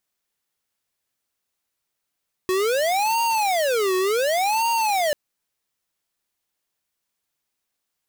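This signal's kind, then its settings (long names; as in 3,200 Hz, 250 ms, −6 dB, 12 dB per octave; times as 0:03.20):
siren wail 370–928 Hz 0.68 per second square −21 dBFS 2.64 s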